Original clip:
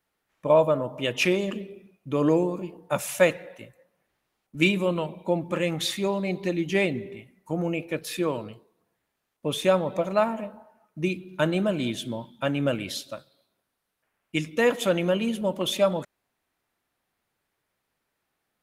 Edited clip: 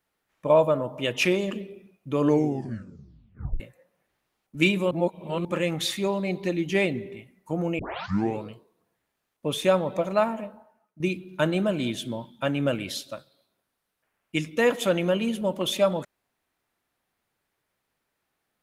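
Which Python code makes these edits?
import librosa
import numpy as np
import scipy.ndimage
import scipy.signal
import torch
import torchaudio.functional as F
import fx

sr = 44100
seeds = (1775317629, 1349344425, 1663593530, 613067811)

y = fx.edit(x, sr, fx.tape_stop(start_s=2.24, length_s=1.36),
    fx.reverse_span(start_s=4.91, length_s=0.54),
    fx.tape_start(start_s=7.79, length_s=0.64),
    fx.fade_out_to(start_s=10.1, length_s=0.9, curve='qsin', floor_db=-14.0), tone=tone)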